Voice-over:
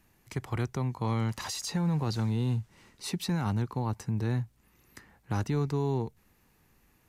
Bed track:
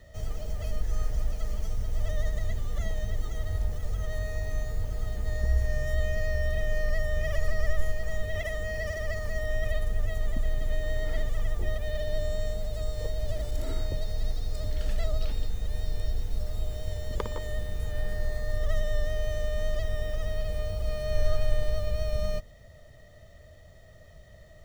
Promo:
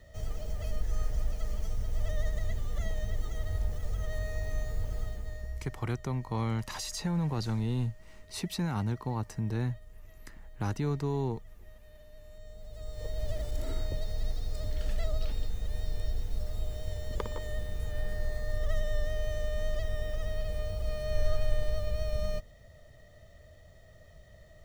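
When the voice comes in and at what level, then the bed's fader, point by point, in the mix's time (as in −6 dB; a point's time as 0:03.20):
5.30 s, −2.0 dB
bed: 0:04.99 −2.5 dB
0:05.94 −23 dB
0:12.21 −23 dB
0:13.20 −3 dB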